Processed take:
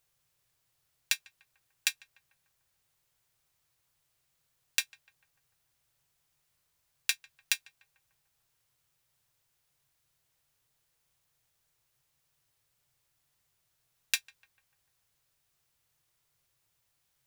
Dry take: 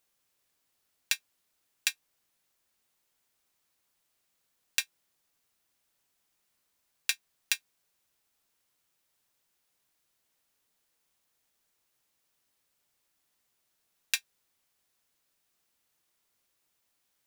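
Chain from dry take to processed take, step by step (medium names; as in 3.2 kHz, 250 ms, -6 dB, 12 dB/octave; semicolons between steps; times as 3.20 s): resonant low shelf 170 Hz +7 dB, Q 3; filtered feedback delay 148 ms, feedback 78%, low-pass 1.3 kHz, level -19 dB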